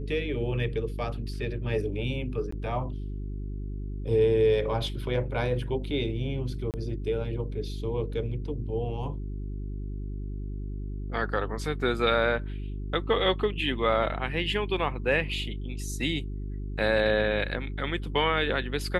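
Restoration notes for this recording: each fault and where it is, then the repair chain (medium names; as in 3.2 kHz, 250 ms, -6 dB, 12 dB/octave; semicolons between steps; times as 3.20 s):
hum 50 Hz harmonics 8 -34 dBFS
2.51–2.52 s: dropout 14 ms
6.71–6.74 s: dropout 28 ms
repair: de-hum 50 Hz, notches 8; interpolate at 2.51 s, 14 ms; interpolate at 6.71 s, 28 ms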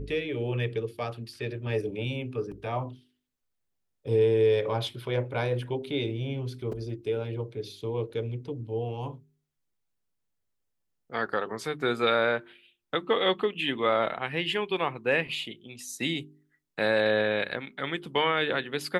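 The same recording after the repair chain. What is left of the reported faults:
nothing left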